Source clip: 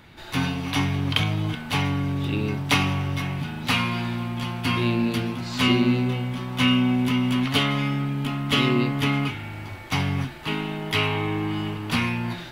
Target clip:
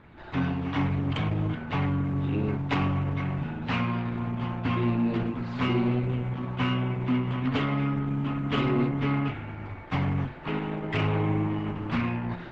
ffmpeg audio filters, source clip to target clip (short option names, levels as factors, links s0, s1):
-filter_complex "[0:a]lowpass=1700,bandreject=f=49.87:t=h:w=4,bandreject=f=99.74:t=h:w=4,bandreject=f=149.61:t=h:w=4,bandreject=f=199.48:t=h:w=4,bandreject=f=249.35:t=h:w=4,bandreject=f=299.22:t=h:w=4,bandreject=f=349.09:t=h:w=4,bandreject=f=398.96:t=h:w=4,bandreject=f=448.83:t=h:w=4,bandreject=f=498.7:t=h:w=4,bandreject=f=548.57:t=h:w=4,bandreject=f=598.44:t=h:w=4,bandreject=f=648.31:t=h:w=4,bandreject=f=698.18:t=h:w=4,bandreject=f=748.05:t=h:w=4,bandreject=f=797.92:t=h:w=4,bandreject=f=847.79:t=h:w=4,bandreject=f=897.66:t=h:w=4,bandreject=f=947.53:t=h:w=4,bandreject=f=997.4:t=h:w=4,bandreject=f=1047.27:t=h:w=4,bandreject=f=1097.14:t=h:w=4,bandreject=f=1147.01:t=h:w=4,bandreject=f=1196.88:t=h:w=4,bandreject=f=1246.75:t=h:w=4,bandreject=f=1296.62:t=h:w=4,asplit=3[s0][s1][s2];[s0]afade=t=out:st=10.93:d=0.02[s3];[s1]adynamicequalizer=threshold=0.0126:dfrequency=130:dqfactor=0.74:tfrequency=130:tqfactor=0.74:attack=5:release=100:ratio=0.375:range=2.5:mode=boostabove:tftype=bell,afade=t=in:st=10.93:d=0.02,afade=t=out:st=11.46:d=0.02[s4];[s2]afade=t=in:st=11.46:d=0.02[s5];[s3][s4][s5]amix=inputs=3:normalize=0,asoftclip=type=tanh:threshold=0.141" -ar 48000 -c:a libopus -b:a 12k